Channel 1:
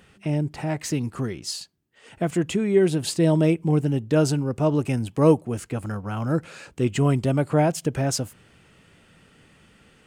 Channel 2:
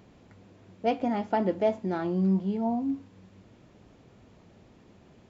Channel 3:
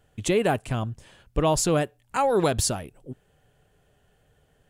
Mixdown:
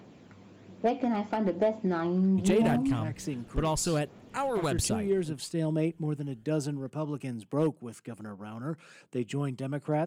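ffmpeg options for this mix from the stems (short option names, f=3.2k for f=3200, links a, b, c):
-filter_complex "[0:a]highpass=f=140:w=0.5412,highpass=f=140:w=1.3066,adelay=2350,volume=-11.5dB[a];[1:a]highpass=130,acompressor=threshold=-26dB:ratio=16,volume=2.5dB[b];[2:a]adelay=2200,volume=-6.5dB[c];[a][b][c]amix=inputs=3:normalize=0,volume=21dB,asoftclip=hard,volume=-21dB,aphaser=in_gain=1:out_gain=1:delay=1:decay=0.3:speed=1.2:type=triangular"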